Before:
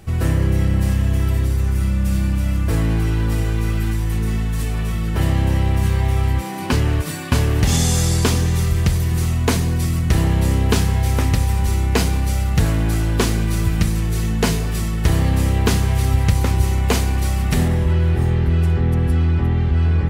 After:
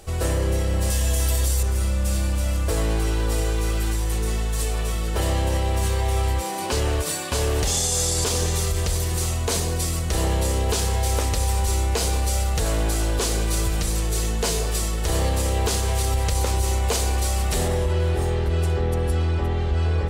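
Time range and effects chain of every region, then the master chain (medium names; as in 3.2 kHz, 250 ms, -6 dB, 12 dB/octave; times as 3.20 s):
0.90–1.63 s: treble shelf 3.5 kHz +11 dB + doubling 14 ms -6.5 dB
whole clip: graphic EQ 125/250/500/2000/4000/8000 Hz -12/-8/+7/-4/+3/+7 dB; peak limiter -13 dBFS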